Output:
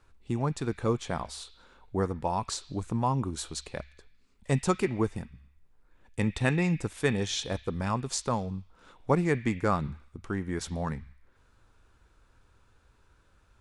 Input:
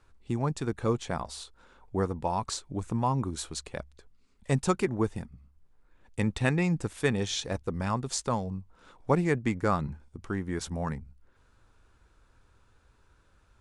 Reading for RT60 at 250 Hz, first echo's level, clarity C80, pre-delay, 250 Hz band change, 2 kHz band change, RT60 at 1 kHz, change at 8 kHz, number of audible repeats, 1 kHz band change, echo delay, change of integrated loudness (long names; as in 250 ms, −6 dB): 1.1 s, no echo audible, 17.5 dB, 3 ms, 0.0 dB, +0.5 dB, 0.95 s, 0.0 dB, no echo audible, 0.0 dB, no echo audible, 0.0 dB